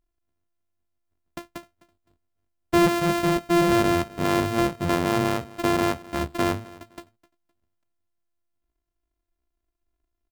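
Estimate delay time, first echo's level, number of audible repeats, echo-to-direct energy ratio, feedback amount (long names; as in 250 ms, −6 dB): 257 ms, −21.0 dB, 2, −20.5 dB, 25%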